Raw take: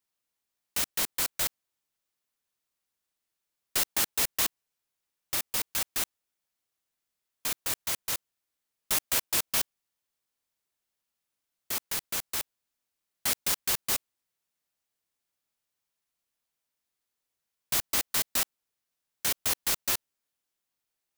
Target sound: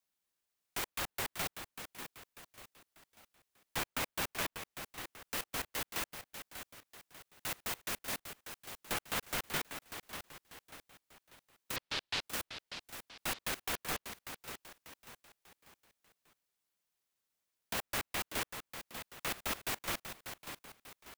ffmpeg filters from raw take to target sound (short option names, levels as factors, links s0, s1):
-filter_complex "[0:a]asettb=1/sr,asplit=3[s0][s1][s2];[s0]atrim=end=11.764[s3];[s1]atrim=start=11.76:end=12.23,asetpts=PTS-STARTPTS,afade=t=in:d=0.004:c=qsin,afade=t=out:st=0.466:d=0.004:c=qsin,lowpass=f=3800:t=q:w=2.6[s4];[s2]atrim=start=12.226[s5];[s3][s4]acrossfade=d=0.004:c1=hsin:c2=qsin[s6];[s6][s5]acrossfade=d=0.004:c1=qsin:c2=hsin,acrossover=split=430|2800[s7][s8][s9];[s9]alimiter=level_in=1.5:limit=0.0631:level=0:latency=1:release=470,volume=0.668[s10];[s7][s8][s10]amix=inputs=3:normalize=0,aecho=1:1:592|1184|1776|2368:0.355|0.142|0.0568|0.0227,aeval=exprs='val(0)*sin(2*PI*560*n/s+560*0.45/2.2*sin(2*PI*2.2*n/s))':c=same,volume=1.12"